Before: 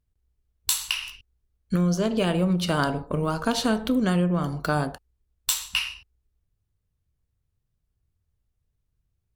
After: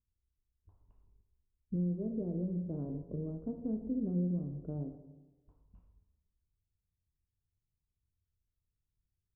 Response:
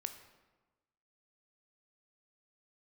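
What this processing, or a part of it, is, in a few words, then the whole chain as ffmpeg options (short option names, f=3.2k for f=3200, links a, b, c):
next room: -filter_complex "[0:a]lowpass=f=440:w=0.5412,lowpass=f=440:w=1.3066[a];[1:a]atrim=start_sample=2205[b];[a][b]afir=irnorm=-1:irlink=0,volume=-9dB"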